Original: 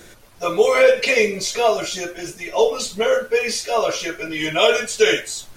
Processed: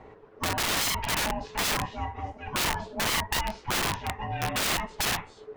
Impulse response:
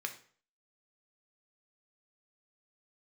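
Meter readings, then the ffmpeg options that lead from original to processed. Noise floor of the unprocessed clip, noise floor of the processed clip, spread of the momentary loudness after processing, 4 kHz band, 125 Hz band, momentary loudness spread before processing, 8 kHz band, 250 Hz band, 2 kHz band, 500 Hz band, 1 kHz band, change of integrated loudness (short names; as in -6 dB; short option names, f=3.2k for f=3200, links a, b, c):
-45 dBFS, -52 dBFS, 7 LU, -5.5 dB, +4.0 dB, 12 LU, -4.0 dB, -7.0 dB, -8.5 dB, -21.0 dB, -5.0 dB, -9.5 dB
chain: -af "lowpass=1.2k,aeval=exprs='(mod(8.91*val(0)+1,2)-1)/8.91':c=same,aeval=exprs='val(0)*sin(2*PI*430*n/s)':c=same"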